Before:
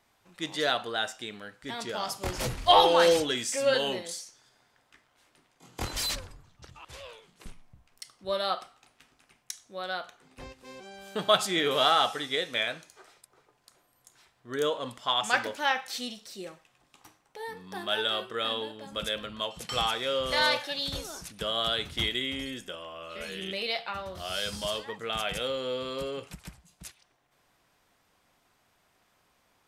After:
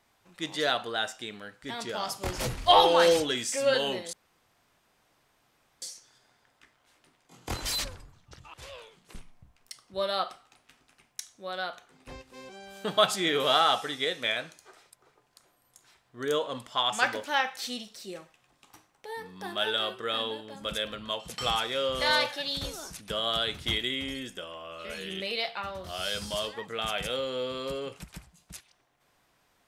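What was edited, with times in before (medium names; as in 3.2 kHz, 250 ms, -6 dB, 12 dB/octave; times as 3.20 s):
4.13 s: insert room tone 1.69 s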